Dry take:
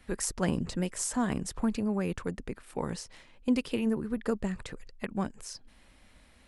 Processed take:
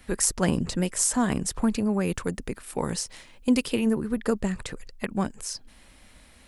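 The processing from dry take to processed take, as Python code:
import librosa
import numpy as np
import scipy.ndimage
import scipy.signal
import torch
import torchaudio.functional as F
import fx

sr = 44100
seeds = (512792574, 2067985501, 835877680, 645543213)

y = fx.high_shelf(x, sr, hz=5800.0, db=fx.steps((0.0, 6.5), (2.06, 12.0), (3.69, 7.0)))
y = y * 10.0 ** (5.0 / 20.0)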